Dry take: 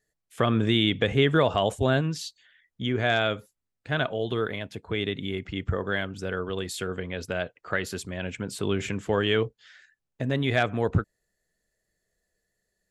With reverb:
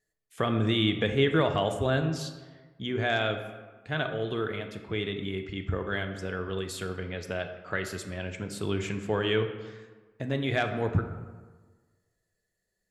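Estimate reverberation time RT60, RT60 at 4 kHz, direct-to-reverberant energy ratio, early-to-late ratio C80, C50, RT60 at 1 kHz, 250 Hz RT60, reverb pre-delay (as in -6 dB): 1.4 s, 0.80 s, 6.0 dB, 10.5 dB, 8.5 dB, 1.4 s, 1.5 s, 3 ms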